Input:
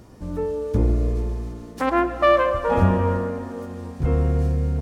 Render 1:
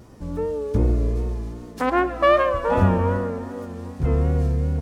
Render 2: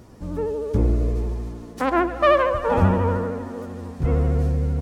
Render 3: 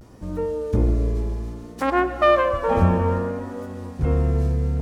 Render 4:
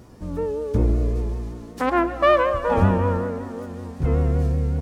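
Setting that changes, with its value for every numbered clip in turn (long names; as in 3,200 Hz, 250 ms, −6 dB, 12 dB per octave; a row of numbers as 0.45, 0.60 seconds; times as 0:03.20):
pitch vibrato, speed: 2.6, 13, 0.61, 5.3 Hertz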